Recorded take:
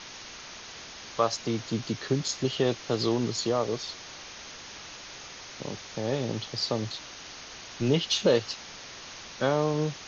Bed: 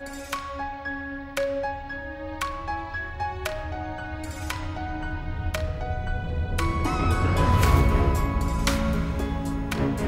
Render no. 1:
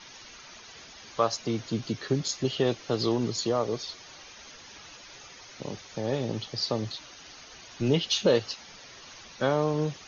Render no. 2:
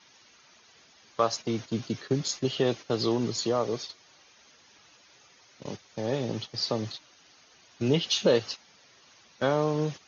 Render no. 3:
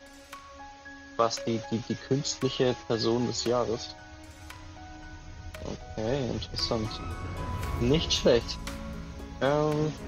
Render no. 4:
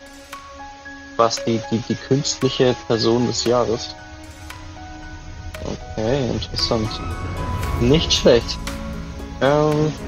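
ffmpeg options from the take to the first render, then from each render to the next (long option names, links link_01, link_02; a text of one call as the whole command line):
ffmpeg -i in.wav -af "afftdn=noise_reduction=9:noise_floor=-44" out.wav
ffmpeg -i in.wav -af "agate=range=-10dB:threshold=-36dB:ratio=16:detection=peak,highpass=91" out.wav
ffmpeg -i in.wav -i bed.wav -filter_complex "[1:a]volume=-14dB[link_01];[0:a][link_01]amix=inputs=2:normalize=0" out.wav
ffmpeg -i in.wav -af "volume=9.5dB,alimiter=limit=-2dB:level=0:latency=1" out.wav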